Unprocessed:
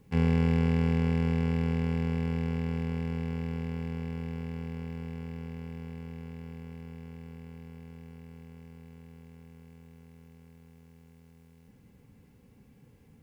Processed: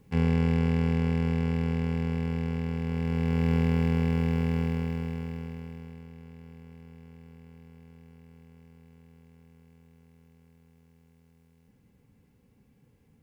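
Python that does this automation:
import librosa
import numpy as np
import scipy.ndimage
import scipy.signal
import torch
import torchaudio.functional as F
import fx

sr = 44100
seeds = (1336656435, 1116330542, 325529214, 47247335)

y = fx.gain(x, sr, db=fx.line((2.8, 0.5), (3.53, 10.0), (4.6, 10.0), (5.39, 3.0), (6.1, -5.0)))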